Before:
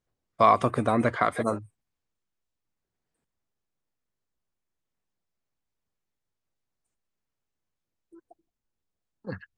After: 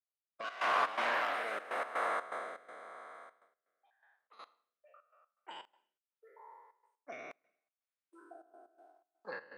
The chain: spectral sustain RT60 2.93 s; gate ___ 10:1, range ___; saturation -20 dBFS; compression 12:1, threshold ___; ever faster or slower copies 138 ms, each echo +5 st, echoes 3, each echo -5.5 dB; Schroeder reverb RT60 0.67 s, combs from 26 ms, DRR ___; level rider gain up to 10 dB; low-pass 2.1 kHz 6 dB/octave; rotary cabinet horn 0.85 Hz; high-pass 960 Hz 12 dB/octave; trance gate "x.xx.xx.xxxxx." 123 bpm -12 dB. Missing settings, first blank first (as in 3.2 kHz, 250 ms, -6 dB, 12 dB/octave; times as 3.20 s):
-57 dBFS, -15 dB, -33 dBFS, 18 dB